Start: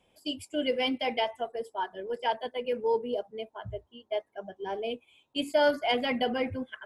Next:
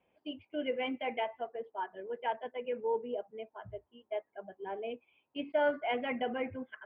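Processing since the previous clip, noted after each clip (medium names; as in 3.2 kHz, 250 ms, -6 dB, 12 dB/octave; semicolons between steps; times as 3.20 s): steep low-pass 2.7 kHz 36 dB/octave; bass shelf 100 Hz -11 dB; trim -5 dB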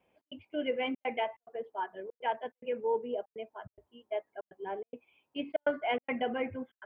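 trance gate "xx.xxxxxx.x" 143 bpm -60 dB; trim +2 dB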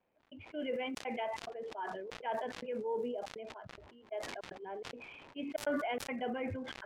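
crackle 230 per s -57 dBFS; level-controlled noise filter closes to 2.1 kHz, open at -28 dBFS; decay stretcher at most 27 dB/s; trim -6.5 dB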